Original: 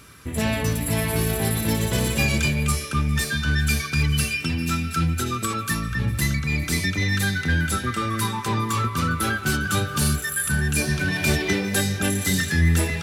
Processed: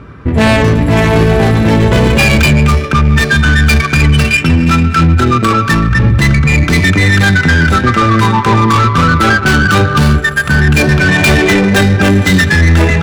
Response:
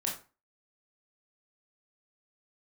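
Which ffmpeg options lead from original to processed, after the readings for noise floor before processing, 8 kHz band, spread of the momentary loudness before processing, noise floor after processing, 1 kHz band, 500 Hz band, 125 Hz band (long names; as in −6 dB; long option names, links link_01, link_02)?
−32 dBFS, +3.0 dB, 4 LU, −17 dBFS, +16.0 dB, +16.0 dB, +14.0 dB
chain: -af "adynamicsmooth=sensitivity=2:basefreq=1100,apsyclip=22dB,volume=-3.5dB"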